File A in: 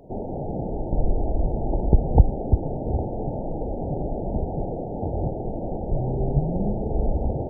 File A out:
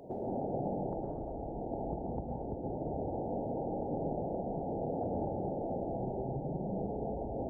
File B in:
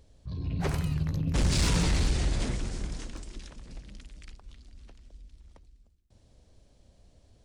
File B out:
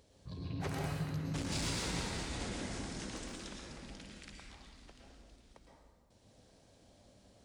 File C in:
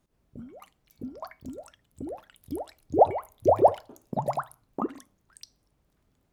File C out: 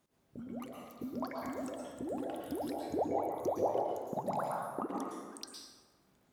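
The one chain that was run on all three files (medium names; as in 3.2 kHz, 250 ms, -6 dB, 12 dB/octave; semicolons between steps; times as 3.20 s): compression 4:1, threshold -34 dBFS; high-pass 240 Hz 6 dB/octave; plate-style reverb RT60 1.5 s, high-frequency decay 0.55×, pre-delay 100 ms, DRR -1.5 dB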